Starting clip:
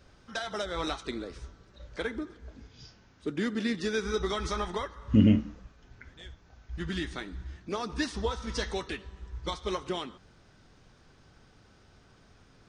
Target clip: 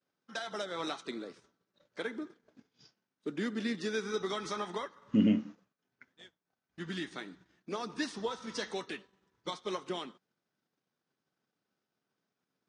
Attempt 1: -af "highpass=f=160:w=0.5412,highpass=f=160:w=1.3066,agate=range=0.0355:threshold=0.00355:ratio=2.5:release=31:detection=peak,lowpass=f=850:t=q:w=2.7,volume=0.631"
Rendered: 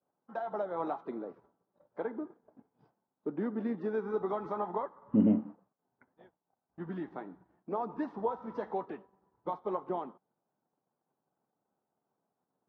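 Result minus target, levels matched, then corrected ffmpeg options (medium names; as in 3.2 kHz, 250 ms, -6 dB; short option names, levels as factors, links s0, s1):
1 kHz band +3.5 dB
-af "highpass=f=160:w=0.5412,highpass=f=160:w=1.3066,agate=range=0.0355:threshold=0.00355:ratio=2.5:release=31:detection=peak,volume=0.631"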